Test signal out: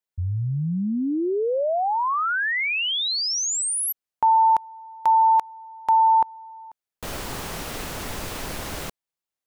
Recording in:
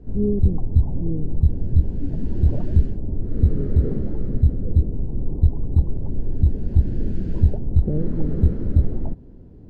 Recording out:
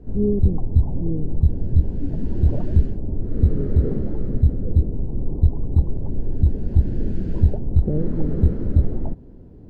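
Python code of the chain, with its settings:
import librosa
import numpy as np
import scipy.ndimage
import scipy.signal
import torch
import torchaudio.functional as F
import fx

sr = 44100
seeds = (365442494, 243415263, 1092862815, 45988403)

y = fx.peak_eq(x, sr, hz=700.0, db=2.5, octaves=2.6)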